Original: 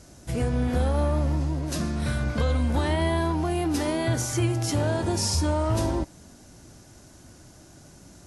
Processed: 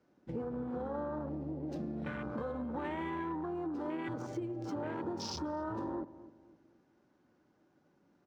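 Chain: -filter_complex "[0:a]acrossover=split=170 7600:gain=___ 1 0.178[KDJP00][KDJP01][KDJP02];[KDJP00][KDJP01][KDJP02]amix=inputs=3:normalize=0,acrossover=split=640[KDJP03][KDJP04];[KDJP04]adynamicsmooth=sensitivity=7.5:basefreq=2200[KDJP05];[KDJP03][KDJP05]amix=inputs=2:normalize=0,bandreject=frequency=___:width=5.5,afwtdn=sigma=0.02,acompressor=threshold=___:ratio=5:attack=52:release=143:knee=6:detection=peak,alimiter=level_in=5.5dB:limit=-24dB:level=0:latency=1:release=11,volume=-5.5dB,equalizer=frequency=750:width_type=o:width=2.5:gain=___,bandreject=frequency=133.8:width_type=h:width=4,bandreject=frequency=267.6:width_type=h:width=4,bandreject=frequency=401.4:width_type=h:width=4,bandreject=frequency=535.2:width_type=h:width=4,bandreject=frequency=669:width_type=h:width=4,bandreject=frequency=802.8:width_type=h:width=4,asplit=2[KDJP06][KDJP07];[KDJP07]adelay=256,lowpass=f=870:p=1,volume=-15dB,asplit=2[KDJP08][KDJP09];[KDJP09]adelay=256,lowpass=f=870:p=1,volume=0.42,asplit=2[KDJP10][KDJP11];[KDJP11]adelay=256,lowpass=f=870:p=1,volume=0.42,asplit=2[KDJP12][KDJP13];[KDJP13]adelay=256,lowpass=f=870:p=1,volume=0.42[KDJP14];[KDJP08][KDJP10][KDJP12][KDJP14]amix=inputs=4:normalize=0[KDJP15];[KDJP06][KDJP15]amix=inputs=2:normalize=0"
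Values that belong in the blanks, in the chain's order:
0.0794, 660, -41dB, 2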